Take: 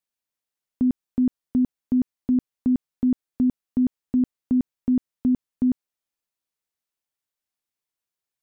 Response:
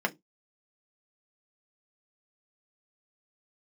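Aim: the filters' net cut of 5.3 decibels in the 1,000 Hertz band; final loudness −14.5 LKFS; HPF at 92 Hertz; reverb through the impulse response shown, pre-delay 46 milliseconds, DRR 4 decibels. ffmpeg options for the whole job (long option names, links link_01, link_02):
-filter_complex "[0:a]highpass=92,equalizer=frequency=1000:width_type=o:gain=-7.5,asplit=2[link_01][link_02];[1:a]atrim=start_sample=2205,adelay=46[link_03];[link_02][link_03]afir=irnorm=-1:irlink=0,volume=-13dB[link_04];[link_01][link_04]amix=inputs=2:normalize=0,volume=10.5dB"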